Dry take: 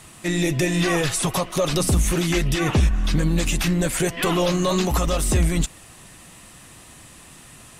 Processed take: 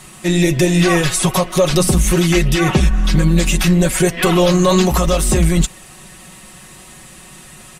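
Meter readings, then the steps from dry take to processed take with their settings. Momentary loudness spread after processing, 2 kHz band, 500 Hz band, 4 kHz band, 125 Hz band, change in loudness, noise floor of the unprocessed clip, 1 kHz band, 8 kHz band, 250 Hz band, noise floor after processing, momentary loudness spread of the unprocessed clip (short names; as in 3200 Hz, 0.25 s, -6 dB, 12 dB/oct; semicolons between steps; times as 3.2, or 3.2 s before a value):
3 LU, +6.0 dB, +8.0 dB, +6.0 dB, +7.0 dB, +7.0 dB, -46 dBFS, +6.5 dB, +6.0 dB, +8.0 dB, -40 dBFS, 3 LU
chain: comb 5.4 ms; gain +4.5 dB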